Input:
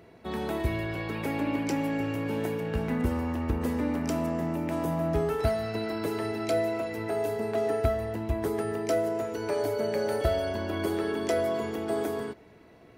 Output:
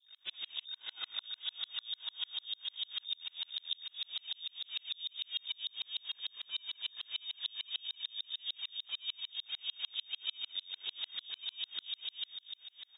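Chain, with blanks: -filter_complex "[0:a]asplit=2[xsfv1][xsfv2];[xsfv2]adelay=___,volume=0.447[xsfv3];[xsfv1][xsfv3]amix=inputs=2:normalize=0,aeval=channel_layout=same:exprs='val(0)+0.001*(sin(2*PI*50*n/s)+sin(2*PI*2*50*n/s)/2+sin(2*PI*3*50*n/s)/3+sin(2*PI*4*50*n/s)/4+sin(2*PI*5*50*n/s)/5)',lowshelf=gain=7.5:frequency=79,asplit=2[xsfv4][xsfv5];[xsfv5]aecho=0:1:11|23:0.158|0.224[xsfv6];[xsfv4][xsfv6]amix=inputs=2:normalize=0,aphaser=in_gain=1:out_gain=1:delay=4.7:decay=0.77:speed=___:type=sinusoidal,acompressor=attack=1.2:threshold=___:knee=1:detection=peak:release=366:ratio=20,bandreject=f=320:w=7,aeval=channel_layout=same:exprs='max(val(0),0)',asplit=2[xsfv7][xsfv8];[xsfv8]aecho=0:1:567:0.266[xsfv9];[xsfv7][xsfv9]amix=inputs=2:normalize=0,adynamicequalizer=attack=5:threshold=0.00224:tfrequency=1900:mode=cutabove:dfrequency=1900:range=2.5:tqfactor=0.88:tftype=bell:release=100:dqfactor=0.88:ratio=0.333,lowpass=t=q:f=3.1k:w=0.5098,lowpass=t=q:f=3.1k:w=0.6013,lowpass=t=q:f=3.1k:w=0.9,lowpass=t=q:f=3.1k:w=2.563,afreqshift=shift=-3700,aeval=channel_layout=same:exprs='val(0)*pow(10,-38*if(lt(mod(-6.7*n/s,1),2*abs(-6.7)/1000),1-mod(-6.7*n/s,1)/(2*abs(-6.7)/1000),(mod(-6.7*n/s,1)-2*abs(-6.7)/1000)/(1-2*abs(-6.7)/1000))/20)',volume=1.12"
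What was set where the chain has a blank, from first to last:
18, 1.6, 0.0631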